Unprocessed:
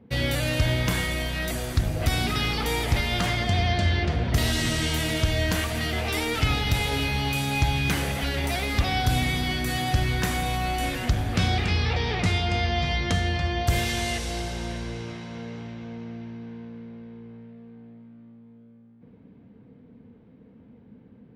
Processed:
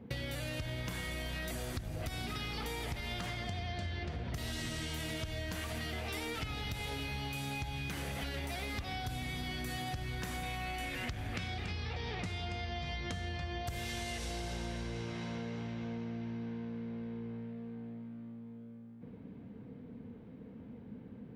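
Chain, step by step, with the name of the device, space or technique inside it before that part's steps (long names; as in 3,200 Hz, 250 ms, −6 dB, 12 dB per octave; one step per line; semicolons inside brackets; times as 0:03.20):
0:10.43–0:11.54: parametric band 2,200 Hz +6.5 dB 0.97 octaves
serial compression, peaks first (downward compressor, threshold −32 dBFS, peak gain reduction 14.5 dB; downward compressor 2.5 to 1, threshold −40 dBFS, peak gain reduction 8 dB)
level +1.5 dB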